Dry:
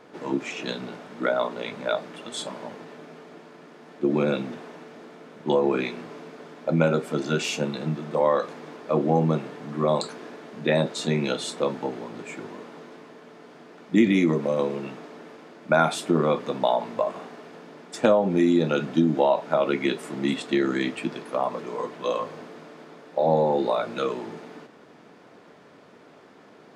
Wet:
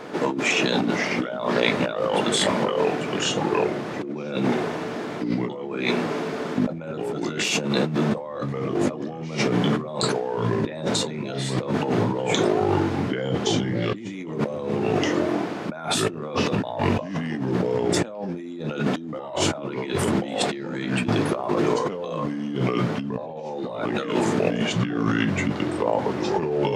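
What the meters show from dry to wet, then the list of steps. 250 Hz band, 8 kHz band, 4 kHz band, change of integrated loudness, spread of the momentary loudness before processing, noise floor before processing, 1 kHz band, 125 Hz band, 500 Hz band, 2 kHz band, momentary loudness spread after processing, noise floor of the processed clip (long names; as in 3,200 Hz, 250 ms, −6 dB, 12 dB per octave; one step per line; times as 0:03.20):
+2.5 dB, +9.0 dB, +7.0 dB, +0.5 dB, 21 LU, −51 dBFS, +1.5 dB, +4.5 dB, +0.5 dB, +4.5 dB, 8 LU, −34 dBFS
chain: delay with pitch and tempo change per echo 437 ms, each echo −3 semitones, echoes 3, each echo −6 dB
compressor whose output falls as the input rises −33 dBFS, ratio −1
level +7 dB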